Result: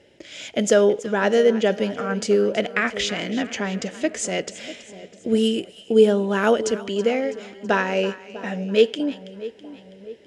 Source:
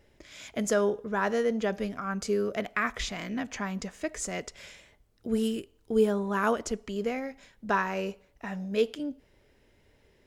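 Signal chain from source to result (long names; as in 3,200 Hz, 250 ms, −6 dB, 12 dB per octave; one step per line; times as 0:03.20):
loudspeaker in its box 130–9,600 Hz, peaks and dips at 330 Hz +4 dB, 530 Hz +6 dB, 1,100 Hz −10 dB, 3,000 Hz +7 dB
echo with a time of its own for lows and highs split 800 Hz, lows 646 ms, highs 327 ms, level −15.5 dB
level +7.5 dB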